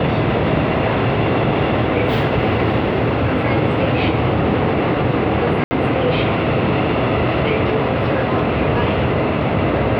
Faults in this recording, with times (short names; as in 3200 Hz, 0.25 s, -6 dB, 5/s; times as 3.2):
5.64–5.71 gap 70 ms